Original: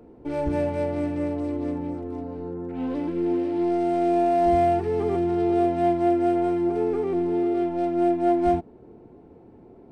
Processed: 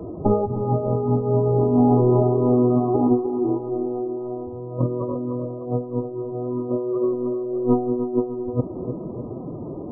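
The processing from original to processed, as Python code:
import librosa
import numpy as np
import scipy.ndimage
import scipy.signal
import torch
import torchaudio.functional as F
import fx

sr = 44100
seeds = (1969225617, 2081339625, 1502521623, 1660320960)

p1 = fx.peak_eq(x, sr, hz=97.0, db=4.5, octaves=1.5)
p2 = fx.over_compress(p1, sr, threshold_db=-29.0, ratio=-0.5)
p3 = fx.pitch_keep_formants(p2, sr, semitones=6.0)
p4 = fx.brickwall_lowpass(p3, sr, high_hz=1300.0)
p5 = p4 + fx.echo_feedback(p4, sr, ms=303, feedback_pct=57, wet_db=-10, dry=0)
y = F.gain(torch.from_numpy(p5), 8.5).numpy()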